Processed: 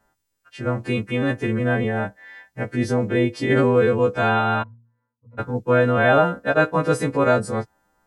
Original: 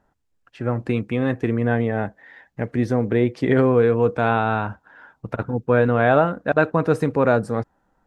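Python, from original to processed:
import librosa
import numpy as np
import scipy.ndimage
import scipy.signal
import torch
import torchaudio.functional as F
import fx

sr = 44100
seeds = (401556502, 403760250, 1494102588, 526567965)

y = fx.freq_snap(x, sr, grid_st=2)
y = fx.octave_resonator(y, sr, note='A#', decay_s=0.52, at=(4.62, 5.37), fade=0.02)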